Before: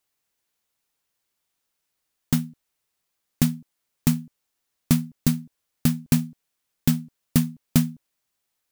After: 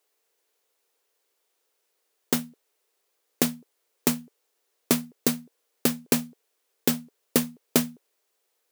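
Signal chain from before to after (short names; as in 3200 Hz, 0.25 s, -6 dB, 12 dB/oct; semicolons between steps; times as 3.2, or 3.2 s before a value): resonant high-pass 430 Hz, resonance Q 3.7; gain +3 dB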